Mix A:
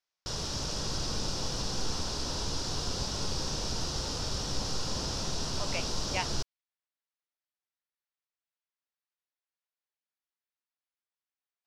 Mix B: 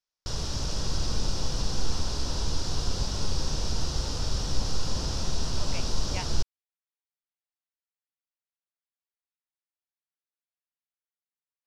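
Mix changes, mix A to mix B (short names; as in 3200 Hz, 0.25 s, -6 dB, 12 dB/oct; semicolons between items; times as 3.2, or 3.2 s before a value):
speech -5.0 dB; background: add low shelf 93 Hz +11 dB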